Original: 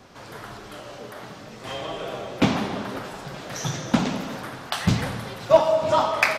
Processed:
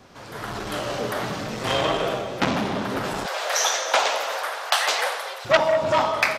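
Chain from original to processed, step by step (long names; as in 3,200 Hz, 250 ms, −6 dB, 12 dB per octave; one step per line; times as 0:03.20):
0:03.26–0:05.45: Butterworth high-pass 510 Hz 36 dB per octave
automatic gain control gain up to 13.5 dB
saturating transformer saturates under 2,100 Hz
level −1 dB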